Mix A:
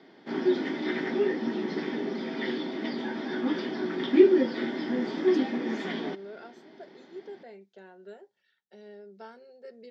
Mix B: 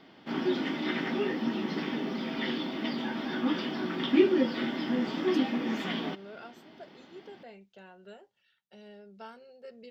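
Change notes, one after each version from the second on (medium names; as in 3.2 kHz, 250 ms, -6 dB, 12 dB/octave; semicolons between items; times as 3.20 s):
master: remove cabinet simulation 170–9500 Hz, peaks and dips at 390 Hz +7 dB, 1.2 kHz -5 dB, 1.8 kHz +3 dB, 2.8 kHz -9 dB, 8.6 kHz -9 dB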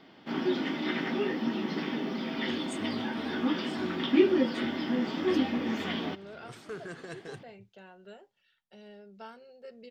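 first voice: unmuted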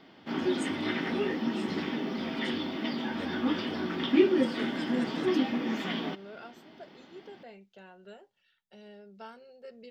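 first voice: entry -2.10 s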